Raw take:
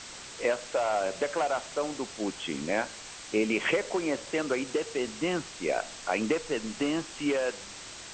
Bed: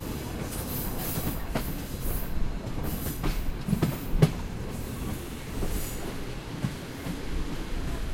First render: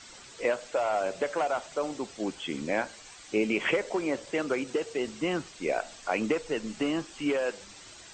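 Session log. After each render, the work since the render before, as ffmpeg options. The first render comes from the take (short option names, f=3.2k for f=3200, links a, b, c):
-af "afftdn=nr=9:nf=-44"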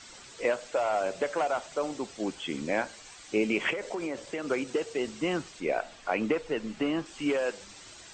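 -filter_complex "[0:a]asettb=1/sr,asplit=3[a][b][c];[a]atrim=end=3.704[d];[b]atrim=start=3.7:end=4.5,asetpts=PTS-STARTPTS,afade=t=in:d=0.004:c=qsin,afade=t=out:st=0.796:d=0.004:c=qsin,acompressor=threshold=-29dB:ratio=6:attack=3.2:release=140:knee=1:detection=peak[e];[c]atrim=start=4.496[f];[d][e]acrossfade=d=0.004:c1=hsin:c2=qsin[g];[g][f]acrossfade=d=0.004:c1=qsin:c2=hsin,asettb=1/sr,asplit=3[h][i][j];[h]atrim=end=5.604[k];[i]atrim=start=5.6:end=7.06,asetpts=PTS-STARTPTS,afade=t=in:d=0.004:c=qsin,afade=t=out:st=1.456:d=0.004:c=qsin,acrossover=split=3900[l][m];[m]acompressor=threshold=-58dB:ratio=4:attack=1:release=60[n];[l][n]amix=inputs=2:normalize=0[o];[j]atrim=start=7.056[p];[k][o]acrossfade=d=0.004:c1=hsin:c2=qsin[q];[q][p]acrossfade=d=0.004:c1=qsin:c2=hsin"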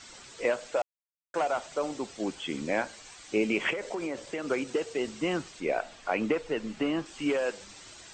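-filter_complex "[0:a]asplit=3[a][b][c];[a]atrim=end=0.82,asetpts=PTS-STARTPTS,afade=t=out:st=0.816:d=0.004:c=hsin[d];[b]atrim=start=0.82:end=1.34,asetpts=PTS-STARTPTS,volume=0[e];[c]atrim=start=1.34,asetpts=PTS-STARTPTS,afade=t=in:d=0.004:c=hsin[f];[d][e][f]concat=n=3:v=0:a=1"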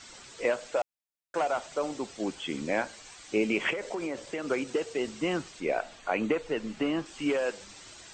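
-filter_complex "[0:a]asettb=1/sr,asplit=3[a][b][c];[a]atrim=end=5.994[d];[b]atrim=start=5.99:end=6.41,asetpts=PTS-STARTPTS,afade=t=in:d=0.004:c=qsin,afade=t=out:st=0.416:d=0.004:c=qsin,asuperstop=centerf=5200:order=12:qfactor=6.3[e];[c]atrim=start=6.406[f];[d][e]acrossfade=d=0.004:c1=hsin:c2=qsin[g];[g][f]acrossfade=d=0.004:c1=qsin:c2=hsin"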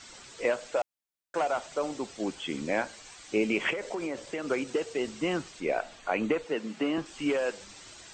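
-filter_complex "[0:a]asettb=1/sr,asplit=3[a][b][c];[a]atrim=end=6.444[d];[b]atrim=start=6.44:end=6.98,asetpts=PTS-STARTPTS,afade=t=in:d=0.004:c=qsin,afade=t=out:st=0.536:d=0.004:c=qsin,highpass=f=160:w=0.5412,highpass=f=160:w=1.3066[e];[c]atrim=start=6.976[f];[d][e]acrossfade=d=0.004:c1=hsin:c2=qsin[g];[g][f]acrossfade=d=0.004:c1=qsin:c2=hsin"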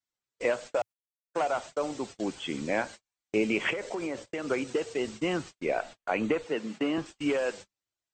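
-af "agate=range=-45dB:threshold=-41dB:ratio=16:detection=peak,equalizer=f=110:w=2.3:g=5"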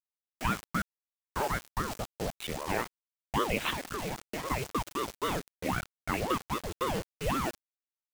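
-af "acrusher=bits=5:mix=0:aa=0.000001,aeval=exprs='val(0)*sin(2*PI*470*n/s+470*0.75/3.8*sin(2*PI*3.8*n/s))':c=same"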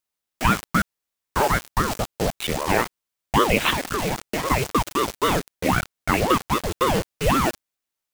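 -af "volume=11dB"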